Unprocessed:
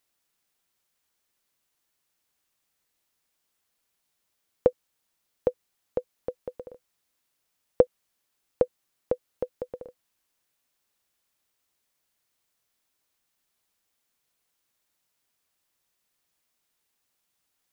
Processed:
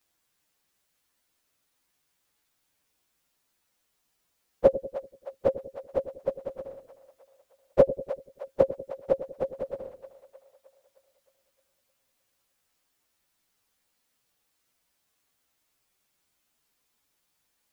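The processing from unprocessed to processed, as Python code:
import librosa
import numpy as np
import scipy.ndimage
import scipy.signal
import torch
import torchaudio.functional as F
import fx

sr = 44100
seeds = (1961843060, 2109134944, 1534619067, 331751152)

y = fx.partial_stretch(x, sr, pct=111)
y = fx.rider(y, sr, range_db=3, speed_s=0.5)
y = fx.echo_split(y, sr, split_hz=570.0, low_ms=96, high_ms=309, feedback_pct=52, wet_db=-12.0)
y = F.gain(torch.from_numpy(y), 5.0).numpy()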